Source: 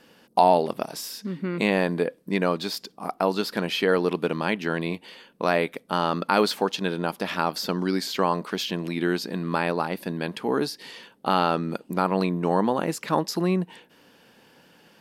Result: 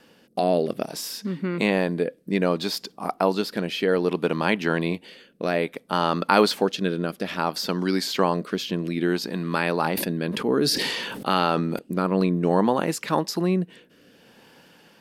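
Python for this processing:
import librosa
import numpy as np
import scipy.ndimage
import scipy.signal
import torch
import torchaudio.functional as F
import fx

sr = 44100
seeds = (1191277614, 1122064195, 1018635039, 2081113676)

y = fx.rotary(x, sr, hz=0.6)
y = fx.sustainer(y, sr, db_per_s=28.0, at=(9.21, 11.79))
y = y * librosa.db_to_amplitude(3.5)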